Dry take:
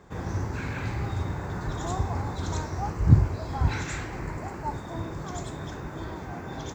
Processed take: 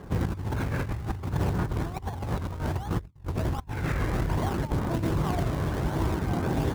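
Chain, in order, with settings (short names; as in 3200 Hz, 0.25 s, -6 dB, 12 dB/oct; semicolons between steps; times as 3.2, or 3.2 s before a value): LPF 1900 Hz 12 dB/oct; negative-ratio compressor -34 dBFS, ratio -0.5; in parallel at -3 dB: decimation with a swept rate 34×, swing 100% 1.3 Hz; on the sum: phaser 0.62 Hz, delay 1.9 ms, feedback 22%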